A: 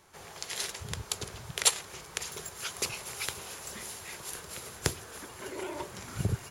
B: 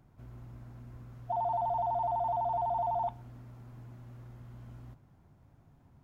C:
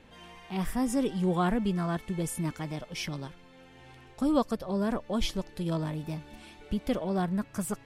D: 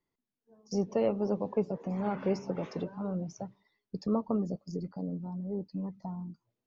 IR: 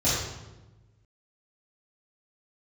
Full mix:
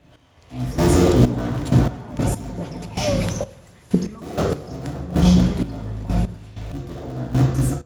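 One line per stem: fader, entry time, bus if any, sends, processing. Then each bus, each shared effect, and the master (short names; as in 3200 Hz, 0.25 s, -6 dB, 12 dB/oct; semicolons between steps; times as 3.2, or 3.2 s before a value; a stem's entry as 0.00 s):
-11.0 dB, 0.00 s, no send, high shelf 5900 Hz -9.5 dB
-17.5 dB, 0.00 s, no send, dry
1.47 s -6 dB -> 1.98 s -13.5 dB, 0.00 s, send -7.5 dB, cycle switcher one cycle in 3, inverted; hard clip -26 dBFS, distortion -11 dB
0.0 dB, 0.00 s, send -19 dB, compressor, threshold -40 dBFS, peak gain reduction 16 dB; phaser 0.76 Hz, delay 2.4 ms, feedback 76%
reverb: on, RT60 1.1 s, pre-delay 3 ms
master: AGC gain up to 14.5 dB; step gate "x....xxx...x.." 96 bpm -12 dB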